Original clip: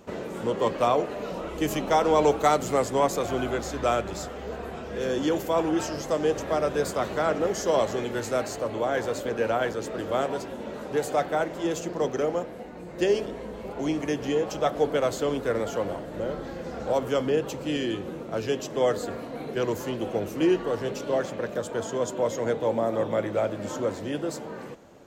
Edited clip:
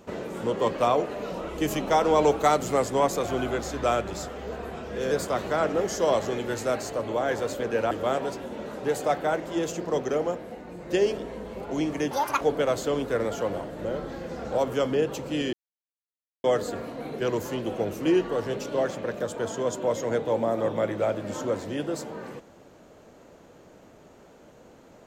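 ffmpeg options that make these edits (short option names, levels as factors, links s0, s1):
-filter_complex "[0:a]asplit=7[s0][s1][s2][s3][s4][s5][s6];[s0]atrim=end=5.112[s7];[s1]atrim=start=6.768:end=9.572[s8];[s2]atrim=start=9.988:end=14.194[s9];[s3]atrim=start=14.19:end=14.76,asetpts=PTS-STARTPTS,asetrate=83790,aresample=44100[s10];[s4]atrim=start=14.756:end=17.88,asetpts=PTS-STARTPTS,afade=t=out:st=3.12:d=0.004:c=hsin[s11];[s5]atrim=start=17.88:end=18.79,asetpts=PTS-STARTPTS,volume=0[s12];[s6]atrim=start=18.79,asetpts=PTS-STARTPTS,afade=t=in:d=0.004:c=hsin[s13];[s7][s8]acrossfade=d=0.004:c1=hsin:c2=hsin[s14];[s14][s9]acrossfade=d=0.004:c1=hsin:c2=hsin[s15];[s15][s10]acrossfade=d=0.004:c1=hsin:c2=hsin[s16];[s11][s12][s13]concat=n=3:v=0:a=1[s17];[s16][s17]acrossfade=d=0.004:c1=hsin:c2=hsin"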